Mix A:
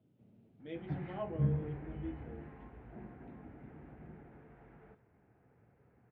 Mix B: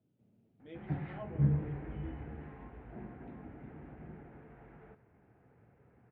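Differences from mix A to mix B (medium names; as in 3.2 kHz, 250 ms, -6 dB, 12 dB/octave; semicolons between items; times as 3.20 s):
speech -5.5 dB; background +3.0 dB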